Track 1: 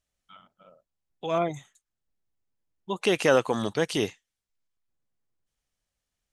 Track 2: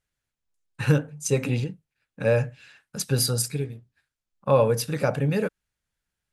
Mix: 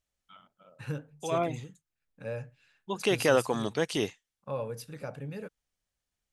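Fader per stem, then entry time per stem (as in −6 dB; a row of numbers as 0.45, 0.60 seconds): −3.0, −15.5 decibels; 0.00, 0.00 seconds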